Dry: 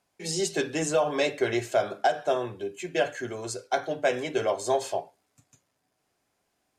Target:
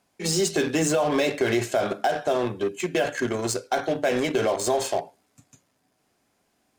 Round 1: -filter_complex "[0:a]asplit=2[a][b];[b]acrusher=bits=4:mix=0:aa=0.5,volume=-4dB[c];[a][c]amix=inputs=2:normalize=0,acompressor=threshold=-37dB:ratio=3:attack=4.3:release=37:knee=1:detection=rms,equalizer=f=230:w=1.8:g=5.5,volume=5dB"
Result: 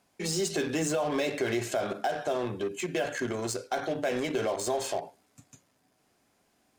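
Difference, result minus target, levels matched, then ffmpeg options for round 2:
compressor: peak gain reduction +6.5 dB
-filter_complex "[0:a]asplit=2[a][b];[b]acrusher=bits=4:mix=0:aa=0.5,volume=-4dB[c];[a][c]amix=inputs=2:normalize=0,acompressor=threshold=-27.5dB:ratio=3:attack=4.3:release=37:knee=1:detection=rms,equalizer=f=230:w=1.8:g=5.5,volume=5dB"

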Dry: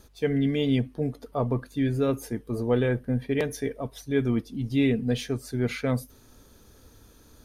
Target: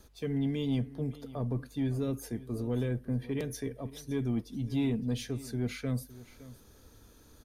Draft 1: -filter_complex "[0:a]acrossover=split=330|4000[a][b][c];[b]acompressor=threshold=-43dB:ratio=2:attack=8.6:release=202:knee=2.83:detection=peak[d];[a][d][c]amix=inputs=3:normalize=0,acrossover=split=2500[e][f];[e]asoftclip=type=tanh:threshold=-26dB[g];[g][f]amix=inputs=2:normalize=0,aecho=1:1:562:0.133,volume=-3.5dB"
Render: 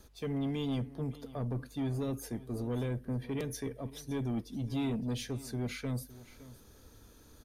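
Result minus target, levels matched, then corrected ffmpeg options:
soft clip: distortion +10 dB
-filter_complex "[0:a]acrossover=split=330|4000[a][b][c];[b]acompressor=threshold=-43dB:ratio=2:attack=8.6:release=202:knee=2.83:detection=peak[d];[a][d][c]amix=inputs=3:normalize=0,acrossover=split=2500[e][f];[e]asoftclip=type=tanh:threshold=-18.5dB[g];[g][f]amix=inputs=2:normalize=0,aecho=1:1:562:0.133,volume=-3.5dB"

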